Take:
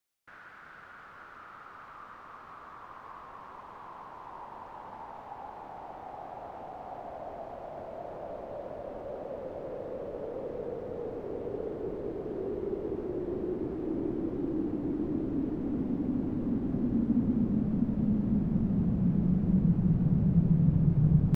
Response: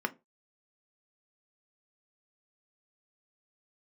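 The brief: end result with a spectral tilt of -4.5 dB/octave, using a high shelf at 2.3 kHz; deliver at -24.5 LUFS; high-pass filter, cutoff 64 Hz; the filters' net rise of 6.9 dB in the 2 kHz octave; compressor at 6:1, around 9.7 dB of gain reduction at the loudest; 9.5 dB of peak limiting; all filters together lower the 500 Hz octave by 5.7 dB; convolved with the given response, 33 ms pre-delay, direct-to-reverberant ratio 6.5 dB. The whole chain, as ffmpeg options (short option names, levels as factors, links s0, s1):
-filter_complex "[0:a]highpass=64,equalizer=f=500:t=o:g=-8.5,equalizer=f=2000:t=o:g=8,highshelf=f=2300:g=4.5,acompressor=threshold=0.0282:ratio=6,alimiter=level_in=2.99:limit=0.0631:level=0:latency=1,volume=0.335,asplit=2[s0][s1];[1:a]atrim=start_sample=2205,adelay=33[s2];[s1][s2]afir=irnorm=-1:irlink=0,volume=0.224[s3];[s0][s3]amix=inputs=2:normalize=0,volume=7.08"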